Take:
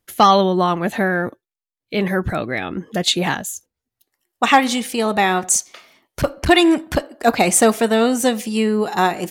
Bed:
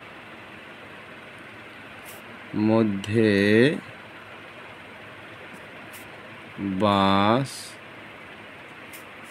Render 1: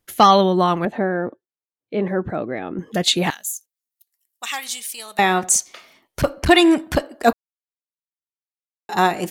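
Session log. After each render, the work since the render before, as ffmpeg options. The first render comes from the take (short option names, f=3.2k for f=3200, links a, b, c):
-filter_complex "[0:a]asettb=1/sr,asplit=3[a][b][c];[a]atrim=end=0.854[d];[b]atrim=start=0.85:end=2.79,asetpts=PTS-STARTPTS,afade=t=in:d=0.004:c=qsin,afade=t=out:st=1.936:d=0.004:c=qsin,bandpass=f=410:t=q:w=0.63[e];[c]atrim=start=2.786[f];[d][e]acrossfade=d=0.004:c1=hsin:c2=qsin[g];[g][f]acrossfade=d=0.004:c1=qsin:c2=hsin,asettb=1/sr,asplit=3[h][i][j];[h]atrim=end=3.304[k];[i]atrim=start=3.3:end=5.19,asetpts=PTS-STARTPTS,afade=t=in:d=0.004:c=qsin,afade=t=out:st=1.886:d=0.004:c=qsin,aderivative[l];[j]atrim=start=5.186[m];[k][l]acrossfade=d=0.004:c1=hsin:c2=qsin[n];[n][m]acrossfade=d=0.004:c1=qsin:c2=hsin,asplit=3[o][p][q];[o]atrim=end=7.33,asetpts=PTS-STARTPTS,afade=t=out:st=7.326:d=0.004:c=hsin[r];[p]atrim=start=7.33:end=8.89,asetpts=PTS-STARTPTS,volume=0[s];[q]atrim=start=8.89,asetpts=PTS-STARTPTS,afade=t=in:d=0.004:c=hsin[t];[r][s][t]concat=n=3:v=0:a=1"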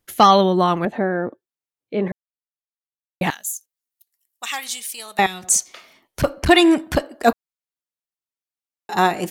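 -filter_complex "[0:a]asettb=1/sr,asplit=3[a][b][c];[a]atrim=end=5.264[d];[b]atrim=start=5.26:end=6.2,asetpts=PTS-STARTPTS,afade=t=in:d=0.004:c=qsin,afade=t=out:st=0.936:d=0.004:c=qsin,acrossover=split=120|3000[e][f][g];[f]acompressor=threshold=-34dB:ratio=6:attack=3.2:release=140:knee=2.83:detection=peak[h];[e][h][g]amix=inputs=3:normalize=0[i];[c]atrim=start=6.196[j];[d][i]acrossfade=d=0.004:c1=hsin:c2=qsin[k];[k][j]acrossfade=d=0.004:c1=qsin:c2=hsin,asplit=3[l][m][n];[l]atrim=end=2.12,asetpts=PTS-STARTPTS,afade=t=out:st=2.116:d=0.004:c=hsin[o];[m]atrim=start=2.12:end=3.21,asetpts=PTS-STARTPTS,volume=0[p];[n]atrim=start=3.21,asetpts=PTS-STARTPTS,afade=t=in:d=0.004:c=hsin[q];[o][p][q]concat=n=3:v=0:a=1"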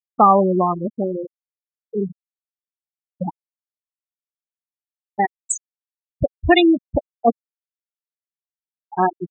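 -af "afwtdn=0.0891,afftfilt=real='re*gte(hypot(re,im),0.447)':imag='im*gte(hypot(re,im),0.447)':win_size=1024:overlap=0.75"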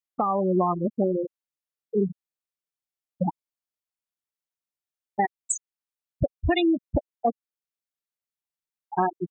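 -af "acompressor=threshold=-16dB:ratio=6,alimiter=limit=-13dB:level=0:latency=1:release=478"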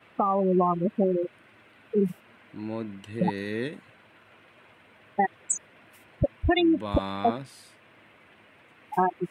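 -filter_complex "[1:a]volume=-13.5dB[a];[0:a][a]amix=inputs=2:normalize=0"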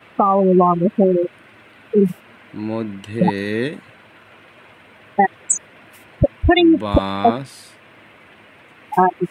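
-af "volume=9.5dB"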